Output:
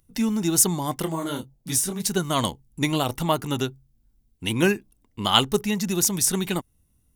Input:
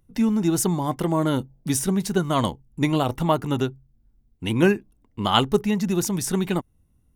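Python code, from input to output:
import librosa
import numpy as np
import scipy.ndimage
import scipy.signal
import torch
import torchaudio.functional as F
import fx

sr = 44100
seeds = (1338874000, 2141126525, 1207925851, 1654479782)

y = fx.high_shelf(x, sr, hz=2700.0, db=12.0)
y = fx.detune_double(y, sr, cents=fx.line((1.05, 41.0), (2.01, 60.0)), at=(1.05, 2.01), fade=0.02)
y = y * 10.0 ** (-3.0 / 20.0)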